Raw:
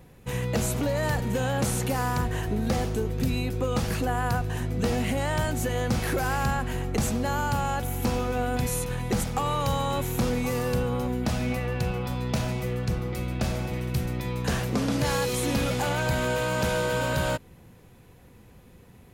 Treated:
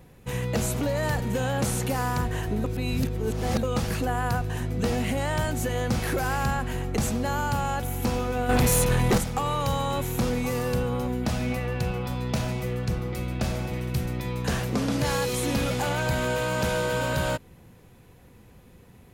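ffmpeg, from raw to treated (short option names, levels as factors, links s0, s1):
-filter_complex "[0:a]asettb=1/sr,asplit=3[s0][s1][s2];[s0]atrim=end=8.494[s3];[s1]atrim=start=8.49:end=9.18,asetpts=PTS-STARTPTS,afade=t=in:d=0.004:c=qsin,afade=t=out:st=0.686:d=0.004:c=qsin,aeval=exprs='0.15*sin(PI/2*2*val(0)/0.15)':c=same[s4];[s2]atrim=start=9.176[s5];[s3][s4]acrossfade=d=0.004:c1=hsin:c2=qsin[s6];[s6][s5]acrossfade=d=0.004:c1=qsin:c2=hsin,asplit=3[s7][s8][s9];[s7]atrim=end=2.642[s10];[s8]atrim=start=2.638:end=3.632,asetpts=PTS-STARTPTS,areverse[s11];[s9]atrim=start=3.628[s12];[s10][s11]acrossfade=d=0.004:c1=hsin:c2=hsin[s13];[s13][s12]acrossfade=d=0.004:c1=hsin:c2=hsin"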